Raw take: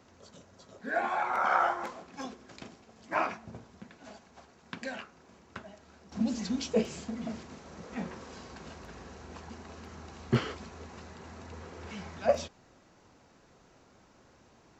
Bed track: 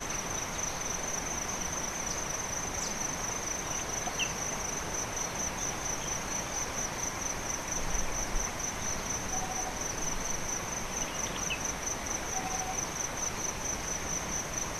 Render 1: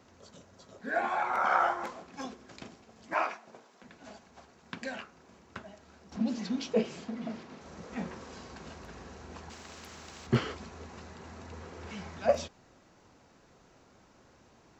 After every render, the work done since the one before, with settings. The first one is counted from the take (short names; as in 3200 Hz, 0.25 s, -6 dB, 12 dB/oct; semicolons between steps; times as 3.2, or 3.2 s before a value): 3.14–3.84 HPF 430 Hz; 6.16–7.61 BPF 150–4800 Hz; 9.5–10.27 spectral compressor 2:1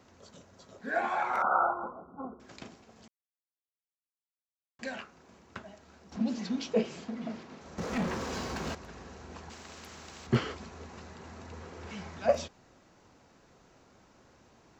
1.42–2.4 brick-wall FIR low-pass 1500 Hz; 3.08–4.79 mute; 7.78–8.75 sample leveller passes 3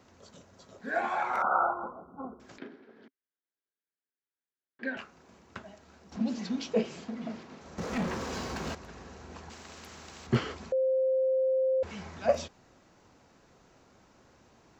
2.58–4.97 speaker cabinet 240–3300 Hz, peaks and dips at 270 Hz +9 dB, 400 Hz +9 dB, 730 Hz -7 dB, 1100 Hz -6 dB, 1600 Hz +8 dB, 2700 Hz -7 dB; 10.72–11.83 bleep 524 Hz -23.5 dBFS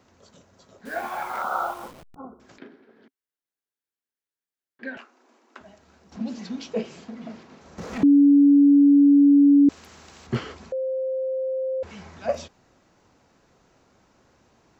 0.85–2.16 level-crossing sampler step -40 dBFS; 4.98–5.61 rippled Chebyshev high-pass 230 Hz, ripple 3 dB; 8.03–9.69 bleep 284 Hz -11 dBFS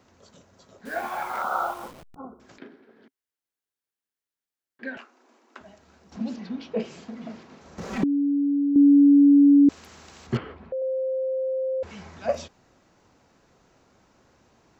6.36–6.8 air absorption 210 m; 7.85–8.76 comb 5.2 ms; 10.37–10.82 air absorption 500 m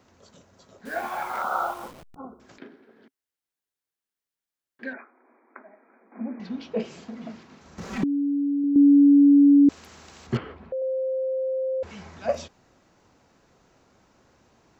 4.93–6.4 brick-wall FIR band-pass 210–2500 Hz; 7.3–8.64 bell 540 Hz -5 dB 1.3 oct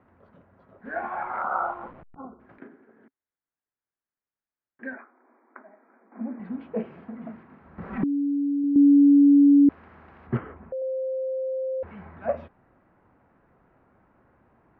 LPF 1900 Hz 24 dB/oct; bell 460 Hz -2.5 dB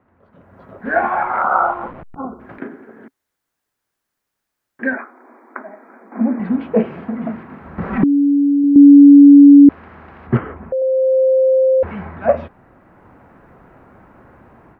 AGC gain up to 16 dB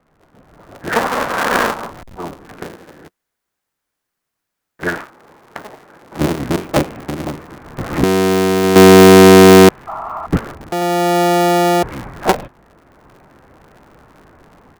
cycle switcher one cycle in 3, inverted; 9.87–10.27 painted sound noise 610–1400 Hz -26 dBFS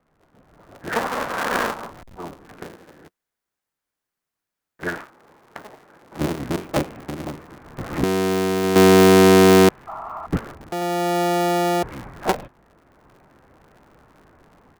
gain -7 dB